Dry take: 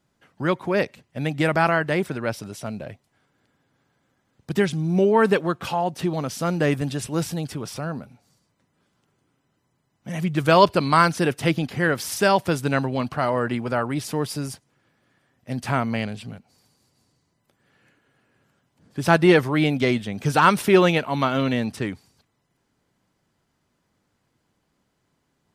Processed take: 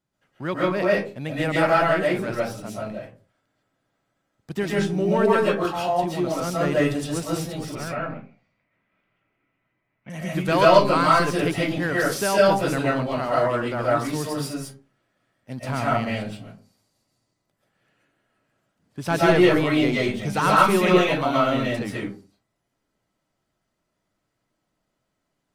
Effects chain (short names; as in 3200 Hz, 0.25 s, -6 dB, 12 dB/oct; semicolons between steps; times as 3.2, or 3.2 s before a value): sample leveller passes 1; 7.75–10.1 synth low-pass 2300 Hz, resonance Q 4.3; reverb RT60 0.40 s, pre-delay 95 ms, DRR -6 dB; gain -9.5 dB